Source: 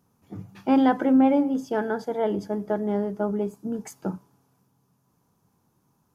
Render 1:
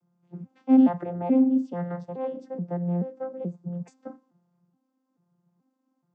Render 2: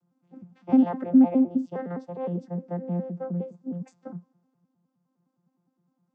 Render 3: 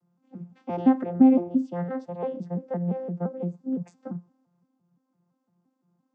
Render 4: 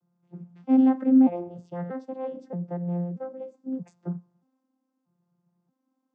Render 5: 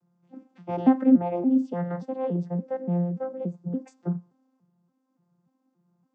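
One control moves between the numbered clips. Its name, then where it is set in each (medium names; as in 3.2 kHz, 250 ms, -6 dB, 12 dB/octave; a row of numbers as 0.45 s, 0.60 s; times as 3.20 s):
vocoder on a broken chord, a note every: 430 ms, 103 ms, 171 ms, 631 ms, 287 ms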